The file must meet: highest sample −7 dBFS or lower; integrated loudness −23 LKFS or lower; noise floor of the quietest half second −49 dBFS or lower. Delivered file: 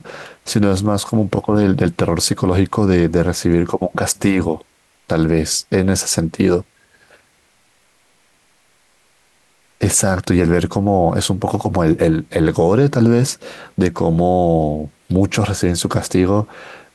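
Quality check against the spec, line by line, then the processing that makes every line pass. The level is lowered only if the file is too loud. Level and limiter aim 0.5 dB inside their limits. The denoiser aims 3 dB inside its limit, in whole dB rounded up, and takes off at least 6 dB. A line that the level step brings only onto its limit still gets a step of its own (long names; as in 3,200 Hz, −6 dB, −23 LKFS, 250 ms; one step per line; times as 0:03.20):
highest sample −3.0 dBFS: out of spec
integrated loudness −16.5 LKFS: out of spec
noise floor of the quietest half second −57 dBFS: in spec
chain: level −7 dB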